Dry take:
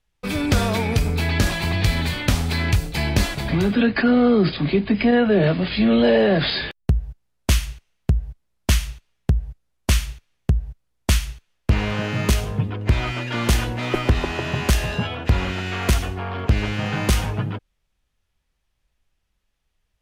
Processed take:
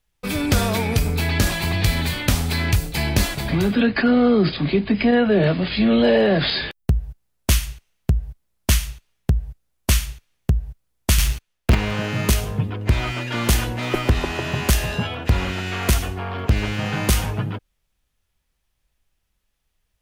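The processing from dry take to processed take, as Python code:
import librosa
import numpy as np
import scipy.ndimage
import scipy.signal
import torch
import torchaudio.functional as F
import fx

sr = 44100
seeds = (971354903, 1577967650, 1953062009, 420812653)

y = fx.leveller(x, sr, passes=3, at=(11.18, 11.75))
y = fx.high_shelf(y, sr, hz=9600.0, db=10.5)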